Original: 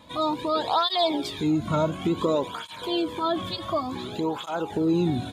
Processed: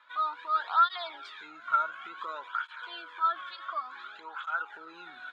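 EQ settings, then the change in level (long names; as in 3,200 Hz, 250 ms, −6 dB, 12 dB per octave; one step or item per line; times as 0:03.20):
four-pole ladder band-pass 1,500 Hz, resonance 80%
+5.5 dB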